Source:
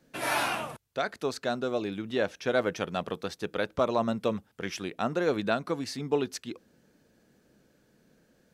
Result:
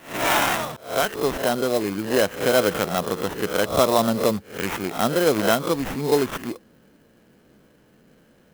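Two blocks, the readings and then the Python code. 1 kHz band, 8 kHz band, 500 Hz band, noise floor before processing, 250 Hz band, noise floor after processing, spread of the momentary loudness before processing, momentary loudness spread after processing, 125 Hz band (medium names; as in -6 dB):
+8.5 dB, +12.5 dB, +8.5 dB, -67 dBFS, +8.0 dB, -57 dBFS, 8 LU, 8 LU, +8.0 dB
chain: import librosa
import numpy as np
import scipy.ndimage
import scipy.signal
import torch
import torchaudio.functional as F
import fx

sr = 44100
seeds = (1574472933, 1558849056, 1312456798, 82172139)

y = fx.spec_swells(x, sr, rise_s=0.39)
y = fx.sample_hold(y, sr, seeds[0], rate_hz=4600.0, jitter_pct=0)
y = fx.clock_jitter(y, sr, seeds[1], jitter_ms=0.03)
y = y * librosa.db_to_amplitude(7.0)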